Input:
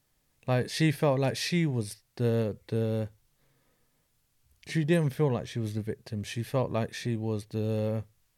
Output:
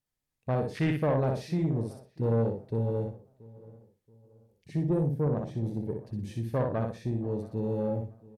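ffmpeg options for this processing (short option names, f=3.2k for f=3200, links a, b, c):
-filter_complex "[0:a]afwtdn=0.0282,asettb=1/sr,asplit=3[a][b][c];[a]atrim=end=4.774[d];[b]atrim=start=4.77:end=5.37,asetpts=PTS-STARTPTS,afade=t=in:d=0.004:c=qsin,afade=t=out:st=0.596:d=0.004:c=qsin,equalizer=f=2.7k:t=o:w=2.3:g=-12[e];[c]atrim=start=5.366[f];[d][e]acrossfade=d=0.004:c1=hsin:c2=qsin[g];[g][f]acrossfade=d=0.004:c1=qsin:c2=hsin,aecho=1:1:61|122|183:0.596|0.137|0.0315,asoftclip=type=tanh:threshold=-19.5dB,asettb=1/sr,asplit=3[h][i][j];[h]atrim=end=6.144[k];[i]atrim=start=6.14:end=6.62,asetpts=PTS-STARTPTS,afade=t=in:d=0.004:c=qsin,afade=t=out:st=0.476:d=0.004:c=qsin,equalizer=f=12k:t=o:w=2.6:g=4.5[l];[j]atrim=start=6.616[m];[k][l]acrossfade=d=0.004:c1=hsin:c2=qsin[n];[n][m]acrossfade=d=0.004:c1=qsin:c2=hsin,asplit=2[o][p];[p]adelay=679,lowpass=f=1.7k:p=1,volume=-21dB,asplit=2[q][r];[r]adelay=679,lowpass=f=1.7k:p=1,volume=0.39,asplit=2[s][t];[t]adelay=679,lowpass=f=1.7k:p=1,volume=0.39[u];[o][q][s][u]amix=inputs=4:normalize=0"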